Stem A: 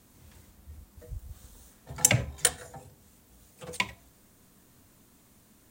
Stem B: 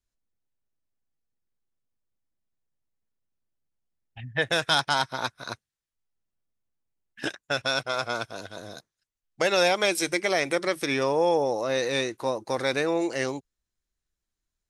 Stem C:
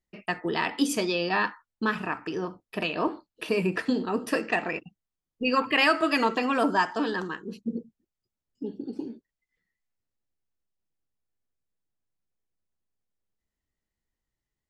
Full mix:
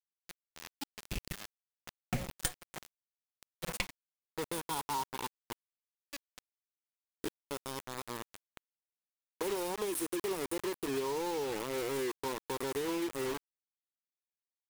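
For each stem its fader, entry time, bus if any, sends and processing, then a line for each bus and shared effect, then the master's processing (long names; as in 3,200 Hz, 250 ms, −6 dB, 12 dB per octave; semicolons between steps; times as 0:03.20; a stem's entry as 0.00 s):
+2.5 dB, 0.00 s, no send, lower of the sound and its delayed copy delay 5.5 ms; gate pattern "xxxx.x..xx" 127 BPM −60 dB
−11.0 dB, 0.00 s, no send, drawn EQ curve 150 Hz 0 dB, 290 Hz +5 dB, 420 Hz +11 dB, 630 Hz −14 dB, 950 Hz +9 dB, 1,900 Hz −23 dB, 3,000 Hz −11 dB, 6,600 Hz −12 dB, 9,500 Hz +11 dB
−16.5 dB, 0.00 s, no send, Chebyshev band-stop filter 240–1,700 Hz, order 2; automatic ducking −16 dB, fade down 0.75 s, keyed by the second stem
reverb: not used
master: notch filter 1,500 Hz, Q 29; bit reduction 6 bits; downward compressor 4 to 1, threshold −32 dBFS, peak gain reduction 14 dB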